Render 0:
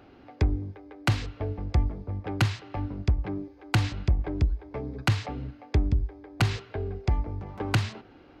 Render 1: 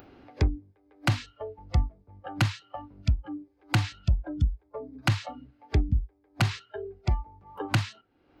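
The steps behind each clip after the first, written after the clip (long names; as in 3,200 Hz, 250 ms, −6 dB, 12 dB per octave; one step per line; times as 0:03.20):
noise reduction from a noise print of the clip's start 21 dB
upward compression, threshold −35 dBFS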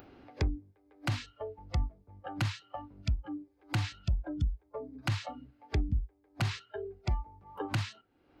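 brickwall limiter −19 dBFS, peak gain reduction 6.5 dB
level −2.5 dB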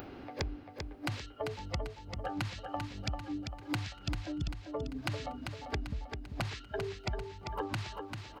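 downward compressor 10 to 1, threshold −42 dBFS, peak gain reduction 17.5 dB
repeating echo 393 ms, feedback 46%, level −6 dB
level +8 dB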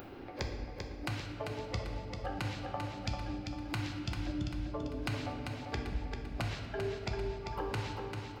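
convolution reverb RT60 2.5 s, pre-delay 4 ms, DRR 1.5 dB
level −2.5 dB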